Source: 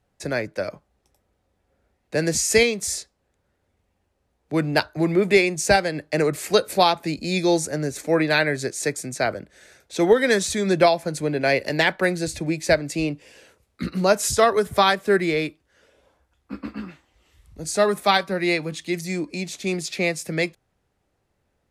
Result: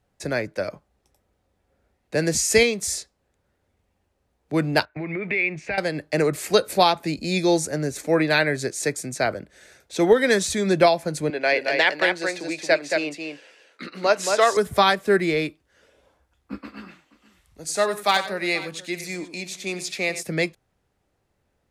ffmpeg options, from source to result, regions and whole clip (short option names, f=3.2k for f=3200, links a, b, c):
-filter_complex "[0:a]asettb=1/sr,asplit=3[a][b][c];[a]atrim=end=4.854[d];[b]atrim=start=4.85:end=5.78,asetpts=PTS-STARTPTS,afade=t=in:d=0.004:c=qsin,afade=t=out:st=0.926:d=0.004:c=qsin,agate=range=-14dB:threshold=-39dB:ratio=16:release=100:detection=peak,acompressor=threshold=-28dB:ratio=5:attack=3.2:release=140:knee=1:detection=peak,lowpass=f=2.3k:t=q:w=4.7[e];[c]atrim=start=5.776[f];[d][e]acrossfade=d=0.004:c1=hsin:c2=qsin[g];[g][f]acrossfade=d=0.004:c1=qsin:c2=hsin,asettb=1/sr,asplit=3[h][i][j];[h]atrim=end=11.304[k];[i]atrim=start=11.3:end=14.57,asetpts=PTS-STARTPTS,afade=t=in:d=0.004:c=qsin,afade=t=out:st=3.266:d=0.004:c=qsin,highpass=400,lowpass=3.1k,aemphasis=mode=production:type=75fm,aecho=1:1:224:0.596,atrim=end_sample=144207[l];[j]atrim=start=14.566[m];[k][l]acrossfade=d=0.004:c1=hsin:c2=qsin[n];[n][m]acrossfade=d=0.004:c1=qsin:c2=hsin,asettb=1/sr,asplit=3[o][p][q];[o]atrim=end=16.584[r];[p]atrim=start=16.58:end=20.23,asetpts=PTS-STARTPTS,afade=t=in:d=0.004:c=qsin,afade=t=out:st=3.646:d=0.004:c=qsin,lowshelf=f=340:g=-11.5,asoftclip=type=hard:threshold=-10.5dB,aecho=1:1:93|479:0.224|0.112,atrim=end_sample=160965[s];[q]atrim=start=20.226[t];[r][s]acrossfade=d=0.004:c1=hsin:c2=qsin[u];[u][t]acrossfade=d=0.004:c1=qsin:c2=hsin"